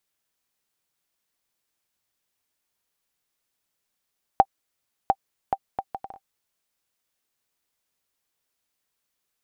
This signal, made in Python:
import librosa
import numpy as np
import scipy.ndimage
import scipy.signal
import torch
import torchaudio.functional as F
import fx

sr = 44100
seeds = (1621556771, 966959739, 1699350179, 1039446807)

y = fx.bouncing_ball(sr, first_gap_s=0.7, ratio=0.61, hz=782.0, decay_ms=53.0, level_db=-3.0)